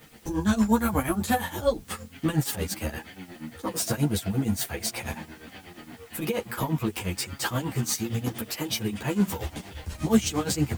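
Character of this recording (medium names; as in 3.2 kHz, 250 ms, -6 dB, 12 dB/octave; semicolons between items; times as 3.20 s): tremolo triangle 8.5 Hz, depth 90%; a quantiser's noise floor 10-bit, dither triangular; a shimmering, thickened sound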